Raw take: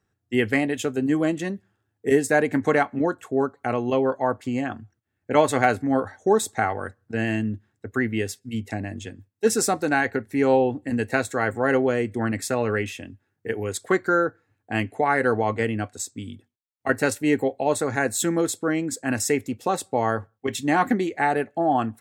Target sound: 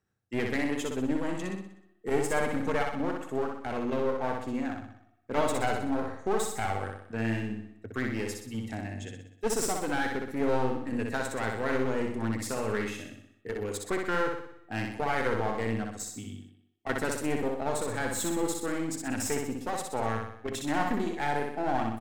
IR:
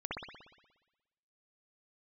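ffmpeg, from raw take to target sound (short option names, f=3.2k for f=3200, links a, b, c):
-filter_complex "[0:a]aeval=exprs='clip(val(0),-1,0.0473)':c=same,aecho=1:1:62|124|186|248|310|372|434:0.668|0.341|0.174|0.0887|0.0452|0.0231|0.0118,asplit=2[a][b];[1:a]atrim=start_sample=2205,adelay=61[c];[b][c]afir=irnorm=-1:irlink=0,volume=-24.5dB[d];[a][d]amix=inputs=2:normalize=0,volume=-7dB"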